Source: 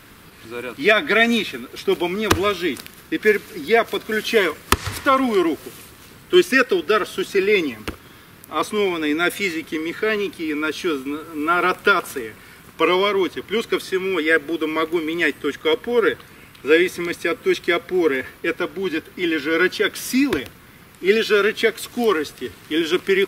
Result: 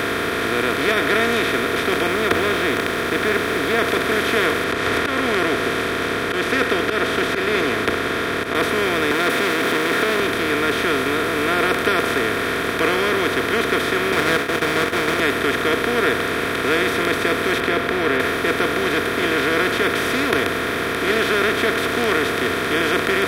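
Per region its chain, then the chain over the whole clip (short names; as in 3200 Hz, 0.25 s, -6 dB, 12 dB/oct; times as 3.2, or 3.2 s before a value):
2.07–3.79 LPF 1800 Hz 6 dB/oct + requantised 8-bit, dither none
4.64–8.55 auto swell 0.22 s + air absorption 83 m
9.11–10.2 zero-crossing step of -27 dBFS + HPF 200 Hz 24 dB/oct + core saturation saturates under 1800 Hz
14.12–15.2 expander -25 dBFS + weighting filter ITU-R 468 + running maximum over 9 samples
17.6–18.2 air absorption 460 m + mismatched tape noise reduction encoder only
whole clip: per-bin compression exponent 0.2; HPF 54 Hz; gain -11 dB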